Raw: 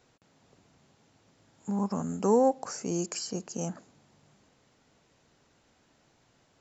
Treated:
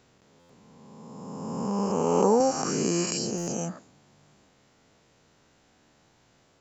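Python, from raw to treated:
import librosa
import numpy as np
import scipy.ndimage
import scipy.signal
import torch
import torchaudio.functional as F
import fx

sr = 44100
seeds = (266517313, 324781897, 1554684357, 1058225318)

y = fx.spec_swells(x, sr, rise_s=2.3)
y = fx.buffer_glitch(y, sr, at_s=(0.39, 3.37), block=512, repeats=8)
y = fx.band_squash(y, sr, depth_pct=70, at=(2.4, 3.06))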